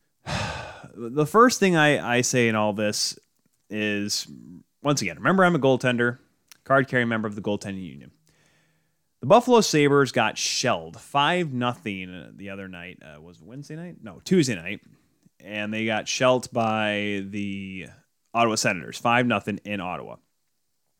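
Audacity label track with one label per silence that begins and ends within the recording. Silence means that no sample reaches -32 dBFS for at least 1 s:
7.930000	9.230000	silence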